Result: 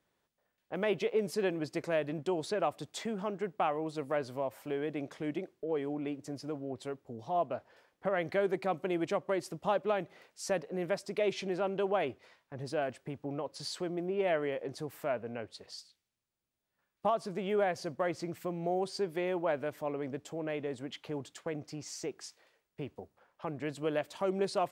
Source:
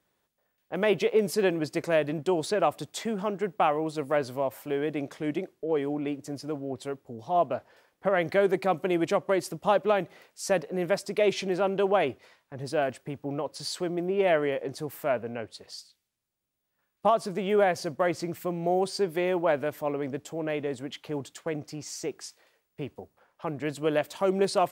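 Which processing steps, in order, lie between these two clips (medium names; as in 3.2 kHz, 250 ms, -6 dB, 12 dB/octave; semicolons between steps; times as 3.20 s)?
treble shelf 11 kHz -10 dB; in parallel at -1 dB: compression, threshold -35 dBFS, peak gain reduction 16 dB; on the sum: trim -8.5 dB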